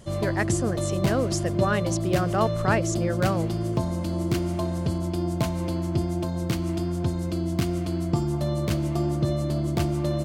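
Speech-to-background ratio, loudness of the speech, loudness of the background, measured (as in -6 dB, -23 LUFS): -1.0 dB, -28.0 LUFS, -27.0 LUFS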